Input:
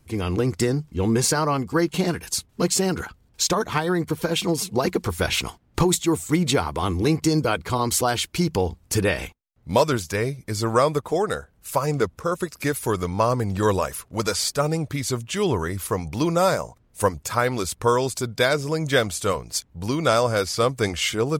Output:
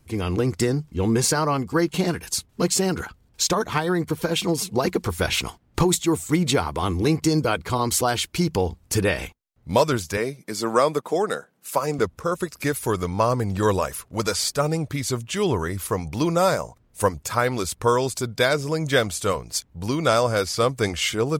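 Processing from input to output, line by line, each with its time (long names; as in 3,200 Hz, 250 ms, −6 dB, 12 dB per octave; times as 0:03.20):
0:10.17–0:11.99: high-pass filter 170 Hz 24 dB per octave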